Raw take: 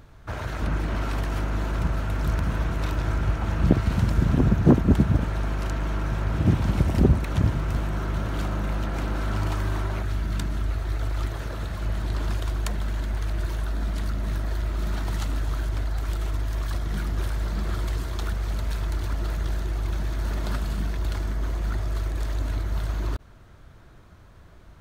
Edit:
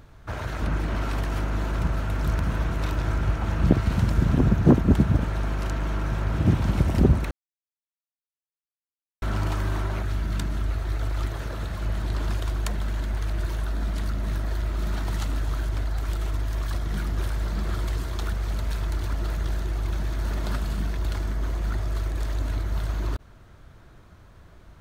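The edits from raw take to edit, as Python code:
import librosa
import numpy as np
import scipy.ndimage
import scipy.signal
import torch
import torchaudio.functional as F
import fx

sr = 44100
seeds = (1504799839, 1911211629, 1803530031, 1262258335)

y = fx.edit(x, sr, fx.silence(start_s=7.31, length_s=1.91), tone=tone)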